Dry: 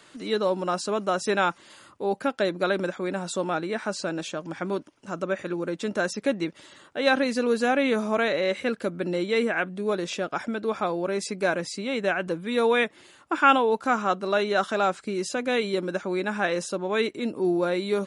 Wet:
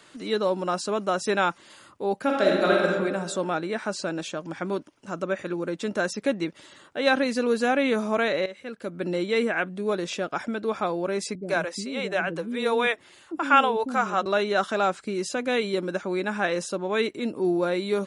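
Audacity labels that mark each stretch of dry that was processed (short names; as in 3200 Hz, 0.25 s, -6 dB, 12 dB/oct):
2.230000	2.860000	reverb throw, RT60 1.5 s, DRR -2.5 dB
8.460000	9.060000	fade in quadratic, from -14 dB
11.350000	14.260000	bands offset in time lows, highs 80 ms, split 370 Hz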